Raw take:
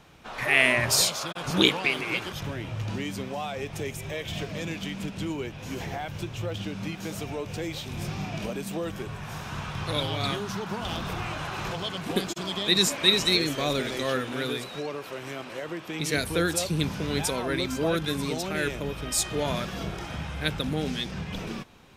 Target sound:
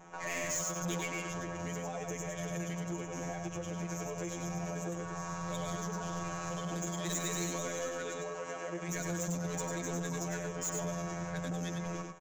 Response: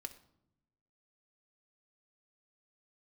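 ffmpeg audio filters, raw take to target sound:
-filter_complex "[0:a]asplit=2[a][b];[b]aeval=exprs='(mod(8.41*val(0)+1,2)-1)/8.41':c=same,volume=-9dB[c];[a][c]amix=inputs=2:normalize=0,firequalizer=gain_entry='entry(1100,0);entry(4400,-19);entry(6300,6)':delay=0.05:min_phase=1,afftfilt=real='hypot(re,im)*cos(PI*b)':imag='0':win_size=2048:overlap=0.75,aeval=exprs='0.596*(cos(1*acos(clip(val(0)/0.596,-1,1)))-cos(1*PI/2))+0.0188*(cos(3*acos(clip(val(0)/0.596,-1,1)))-cos(3*PI/2))+0.00944*(cos(4*acos(clip(val(0)/0.596,-1,1)))-cos(4*PI/2))+0.0106*(cos(6*acos(clip(val(0)/0.596,-1,1)))-cos(6*PI/2))':c=same,aecho=1:1:6.2:0.98,acrossover=split=560|2100[d][e][f];[e]acontrast=28[g];[d][g][f]amix=inputs=3:normalize=0,aresample=16000,aresample=44100,acrossover=split=240|3000[h][i][j];[i]acompressor=threshold=-37dB:ratio=4[k];[h][k][j]amix=inputs=3:normalize=0,asoftclip=type=tanh:threshold=-28.5dB,aecho=1:1:184:0.631,atempo=1.8,lowshelf=f=160:g=-4,volume=-2dB"

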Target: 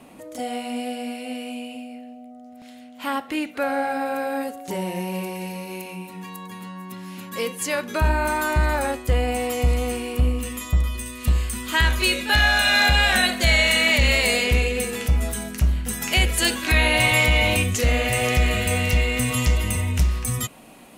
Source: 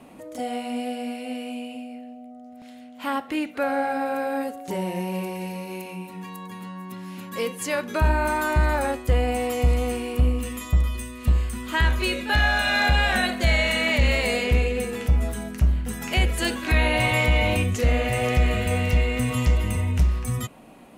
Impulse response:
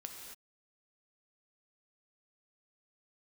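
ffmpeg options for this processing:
-af "asetnsamples=n=441:p=0,asendcmd='11.06 highshelf g 10',highshelf=f=2.3k:g=4.5"

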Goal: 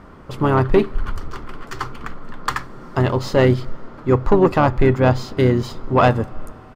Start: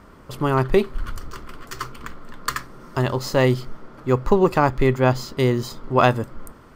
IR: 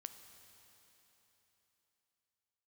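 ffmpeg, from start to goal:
-filter_complex "[0:a]asplit=2[a][b];[b]asetrate=33038,aresample=44100,atempo=1.33484,volume=-10dB[c];[a][c]amix=inputs=2:normalize=0,acontrast=85,lowpass=f=2.8k:p=1,asplit=2[d][e];[1:a]atrim=start_sample=2205[f];[e][f]afir=irnorm=-1:irlink=0,volume=-10dB[g];[d][g]amix=inputs=2:normalize=0,volume=-4dB"

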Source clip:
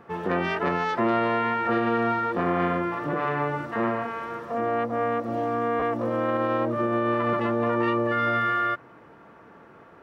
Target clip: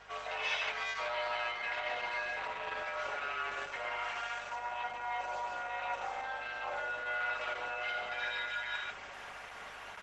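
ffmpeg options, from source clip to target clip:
-filter_complex "[0:a]highpass=f=610:p=1,aecho=1:1:6:0.42,areverse,acompressor=threshold=-39dB:ratio=12,areverse,aexciter=amount=3.9:drive=3.2:freq=2k,afreqshift=260,aeval=exprs='val(0)+0.000355*(sin(2*PI*50*n/s)+sin(2*PI*2*50*n/s)/2+sin(2*PI*3*50*n/s)/3+sin(2*PI*4*50*n/s)/4+sin(2*PI*5*50*n/s)/5)':c=same,asplit=2[a][b];[b]aecho=0:1:50|81|144|149:0.447|0.422|0.562|0.106[c];[a][c]amix=inputs=2:normalize=0,volume=3dB" -ar 48000 -c:a libopus -b:a 12k

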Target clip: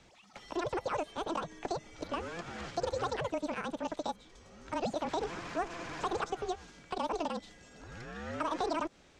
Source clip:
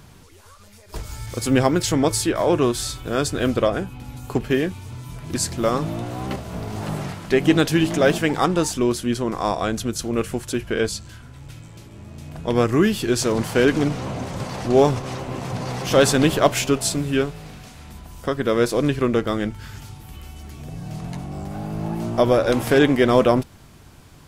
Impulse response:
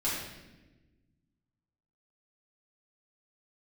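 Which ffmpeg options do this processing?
-filter_complex "[0:a]acrossover=split=210|550|2000[a][b][c][d];[a]acompressor=threshold=-36dB:ratio=4[e];[b]acompressor=threshold=-23dB:ratio=4[f];[c]acompressor=threshold=-37dB:ratio=4[g];[d]acompressor=threshold=-42dB:ratio=4[h];[e][f][g][h]amix=inputs=4:normalize=0,highpass=f=170:t=q:w=0.5412,highpass=f=170:t=q:w=1.307,lowpass=f=2.9k:t=q:w=0.5176,lowpass=f=2.9k:t=q:w=0.7071,lowpass=f=2.9k:t=q:w=1.932,afreqshift=-130,asetrate=116424,aresample=44100,volume=-9dB"

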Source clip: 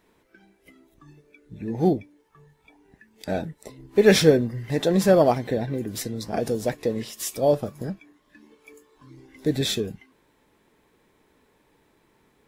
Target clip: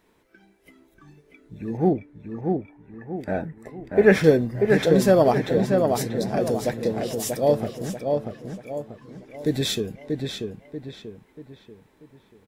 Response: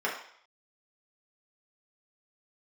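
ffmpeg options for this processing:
-filter_complex "[0:a]asettb=1/sr,asplit=3[a][b][c];[a]atrim=end=1.774[d];[b]atrim=start=1.77:end=4.24,asetpts=PTS-STARTPTS,afade=t=in:d=0.004:c=qsin,afade=t=out:st=2.466:d=0.004:c=qsin,highshelf=f=2.7k:t=q:w=1.5:g=-11.5[e];[c]atrim=start=4.236[f];[d][e]acrossfade=d=0.004:c1=hsin:c2=qsin[g];[g][f]acrossfade=d=0.004:c1=qsin:c2=hsin,asplit=2[h][i];[i]adelay=637,lowpass=f=3.1k:p=1,volume=-4dB,asplit=2[j][k];[k]adelay=637,lowpass=f=3.1k:p=1,volume=0.42,asplit=2[l][m];[m]adelay=637,lowpass=f=3.1k:p=1,volume=0.42,asplit=2[n][o];[o]adelay=637,lowpass=f=3.1k:p=1,volume=0.42,asplit=2[p][q];[q]adelay=637,lowpass=f=3.1k:p=1,volume=0.42[r];[h][j][l][n][p][r]amix=inputs=6:normalize=0"

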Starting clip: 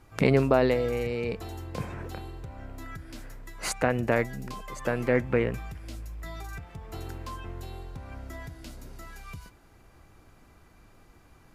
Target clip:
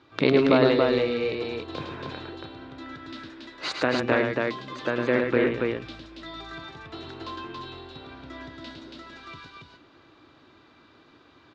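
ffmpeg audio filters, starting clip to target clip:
-af "highpass=190,equalizer=f=190:t=q:w=4:g=-10,equalizer=f=310:t=q:w=4:g=4,equalizer=f=490:t=q:w=4:g=-3,equalizer=f=750:t=q:w=4:g=-7,equalizer=f=2.1k:t=q:w=4:g=-4,equalizer=f=3.7k:t=q:w=4:g=9,lowpass=f=4.5k:w=0.5412,lowpass=f=4.5k:w=1.3066,aecho=1:1:108|279:0.531|0.708,volume=3.5dB"

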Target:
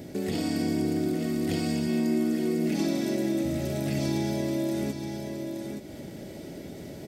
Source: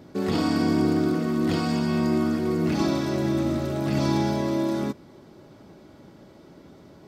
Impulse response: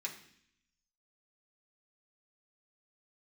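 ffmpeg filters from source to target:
-filter_complex "[0:a]asplit=2[a][b];[b]aecho=0:1:872:0.237[c];[a][c]amix=inputs=2:normalize=0,dynaudnorm=f=310:g=3:m=3.5dB,firequalizer=gain_entry='entry(670,0);entry(1100,-14);entry(1900,2);entry(4200,0);entry(8600,9)':delay=0.05:min_phase=1,acompressor=threshold=-44dB:ratio=2,asettb=1/sr,asplit=3[d][e][f];[d]atrim=end=1.884[g];[e]atrim=start=1.88:end=3.45,asetpts=PTS-STARTPTS,afade=t=in:d=0.004:c=qsin,afade=t=out:st=1.566:d=0.004:c=qsin,lowshelf=f=150:t=q:w=1.5:g=-10.5[h];[f]atrim=start=3.446[i];[g][h]acrossfade=d=0.004:c1=hsin:c2=qsin[j];[j][i]acrossfade=d=0.004:c1=qsin:c2=hsin,volume=6.5dB"

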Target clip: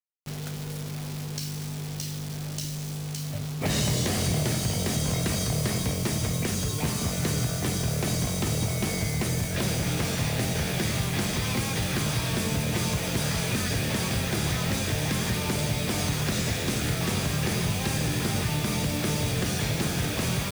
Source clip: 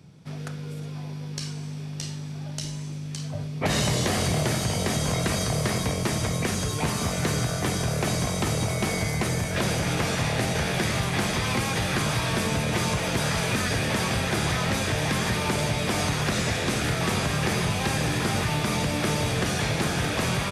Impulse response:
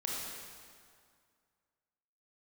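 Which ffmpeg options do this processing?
-af "acrusher=bits=5:mix=0:aa=0.000001,equalizer=f=1.1k:w=0.48:g=-6.5"

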